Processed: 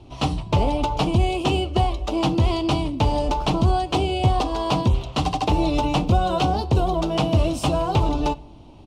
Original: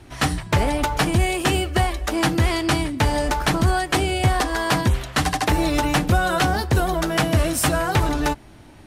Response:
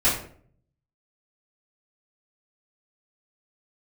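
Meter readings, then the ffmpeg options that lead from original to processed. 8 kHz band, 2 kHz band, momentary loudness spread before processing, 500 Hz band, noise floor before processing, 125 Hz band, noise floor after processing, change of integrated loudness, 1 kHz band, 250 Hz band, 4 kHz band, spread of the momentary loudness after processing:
-11.5 dB, -11.0 dB, 3 LU, 0.0 dB, -45 dBFS, 0.0 dB, -44 dBFS, -1.0 dB, -0.5 dB, 0.0 dB, -2.5 dB, 3 LU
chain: -filter_complex "[0:a]firequalizer=gain_entry='entry(1000,0);entry(1700,-22);entry(2700,-1);entry(12000,-21)':delay=0.05:min_phase=1,asplit=2[a][b];[1:a]atrim=start_sample=2205,adelay=15[c];[b][c]afir=irnorm=-1:irlink=0,volume=-32.5dB[d];[a][d]amix=inputs=2:normalize=0"

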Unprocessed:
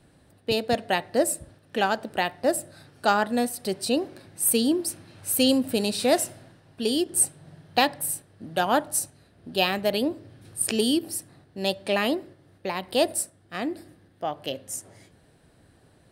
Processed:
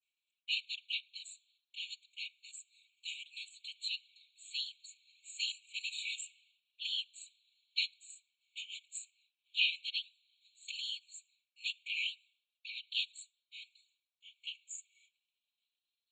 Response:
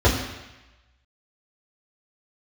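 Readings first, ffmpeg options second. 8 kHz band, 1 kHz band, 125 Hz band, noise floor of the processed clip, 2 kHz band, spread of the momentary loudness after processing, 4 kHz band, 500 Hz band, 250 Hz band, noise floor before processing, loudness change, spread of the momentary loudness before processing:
-21.0 dB, under -40 dB, under -40 dB, under -85 dBFS, -10.0 dB, 18 LU, -6.0 dB, under -40 dB, under -40 dB, -59 dBFS, -13.0 dB, 12 LU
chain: -af "afftfilt=real='re*pow(10,7/40*sin(2*PI*(0.51*log(max(b,1)*sr/1024/100)/log(2)-(0.34)*(pts-256)/sr)))':imag='im*pow(10,7/40*sin(2*PI*(0.51*log(max(b,1)*sr/1024/100)/log(2)-(0.34)*(pts-256)/sr)))':win_size=1024:overlap=0.75,afftfilt=real='hypot(re,im)*cos(2*PI*random(0))':imag='hypot(re,im)*sin(2*PI*random(1))':win_size=512:overlap=0.75,agate=range=-33dB:threshold=-54dB:ratio=3:detection=peak,aresample=16000,aresample=44100,afftfilt=real='re*eq(mod(floor(b*sr/1024/2200),2),1)':imag='im*eq(mod(floor(b*sr/1024/2200),2),1)':win_size=1024:overlap=0.75"

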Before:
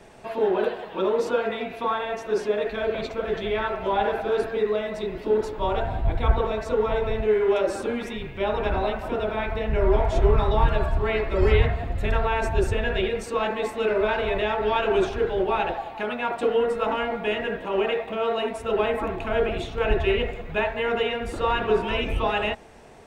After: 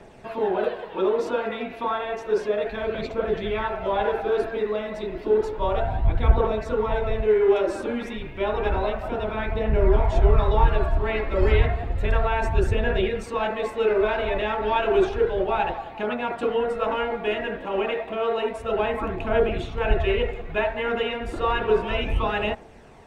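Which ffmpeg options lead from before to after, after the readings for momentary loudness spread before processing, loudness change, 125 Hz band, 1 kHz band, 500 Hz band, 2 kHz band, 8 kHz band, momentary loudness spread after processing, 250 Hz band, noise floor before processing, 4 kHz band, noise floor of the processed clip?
6 LU, +0.5 dB, +1.5 dB, 0.0 dB, +0.5 dB, -0.5 dB, n/a, 7 LU, +0.5 dB, -38 dBFS, -2.0 dB, -38 dBFS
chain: -af "highshelf=f=4.7k:g=-7,aphaser=in_gain=1:out_gain=1:delay=3.8:decay=0.31:speed=0.31:type=triangular"

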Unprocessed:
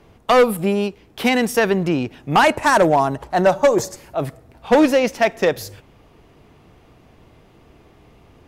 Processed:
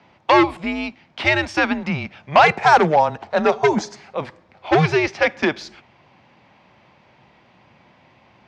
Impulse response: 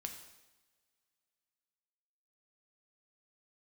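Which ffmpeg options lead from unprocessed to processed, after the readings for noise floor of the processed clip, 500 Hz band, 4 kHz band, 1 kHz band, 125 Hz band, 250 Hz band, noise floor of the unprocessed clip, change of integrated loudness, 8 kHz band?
-55 dBFS, -3.0 dB, 0.0 dB, +1.5 dB, +1.0 dB, -3.0 dB, -52 dBFS, -0.5 dB, -8.0 dB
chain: -af "afreqshift=-150,highpass=190,equalizer=f=290:t=q:w=4:g=-9,equalizer=f=470:t=q:w=4:g=-7,equalizer=f=870:t=q:w=4:g=5,equalizer=f=2.2k:t=q:w=4:g=4,lowpass=f=5.3k:w=0.5412,lowpass=f=5.3k:w=1.3066,volume=1.5dB"

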